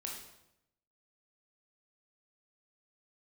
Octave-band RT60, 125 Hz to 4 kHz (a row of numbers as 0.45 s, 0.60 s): 1.0 s, 0.95 s, 0.85 s, 0.80 s, 0.75 s, 0.70 s